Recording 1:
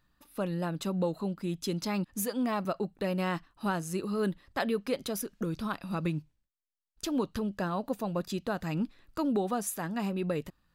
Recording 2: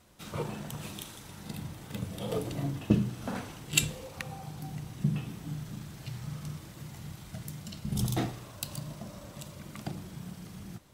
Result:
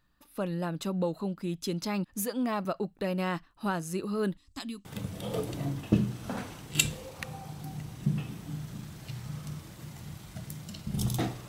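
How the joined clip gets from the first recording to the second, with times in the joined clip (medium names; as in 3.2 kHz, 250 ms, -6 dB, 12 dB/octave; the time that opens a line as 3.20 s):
recording 1
4.37–4.85 s: FFT filter 100 Hz 0 dB, 160 Hz -17 dB, 280 Hz +1 dB, 490 Hz -26 dB, 1.1 kHz -9 dB, 1.6 kHz -17 dB, 2.3 kHz -7 dB, 4.6 kHz +1 dB, 7.7 kHz +11 dB, 12 kHz -4 dB
4.85 s: go over to recording 2 from 1.83 s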